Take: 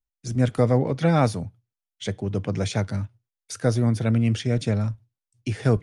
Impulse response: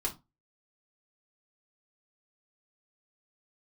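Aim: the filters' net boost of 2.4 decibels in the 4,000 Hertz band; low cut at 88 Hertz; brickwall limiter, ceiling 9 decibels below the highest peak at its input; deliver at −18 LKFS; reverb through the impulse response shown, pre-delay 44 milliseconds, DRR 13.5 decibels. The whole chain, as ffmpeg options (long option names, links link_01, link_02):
-filter_complex "[0:a]highpass=88,equalizer=frequency=4000:width_type=o:gain=3,alimiter=limit=-16.5dB:level=0:latency=1,asplit=2[link_01][link_02];[1:a]atrim=start_sample=2205,adelay=44[link_03];[link_02][link_03]afir=irnorm=-1:irlink=0,volume=-17.5dB[link_04];[link_01][link_04]amix=inputs=2:normalize=0,volume=9.5dB"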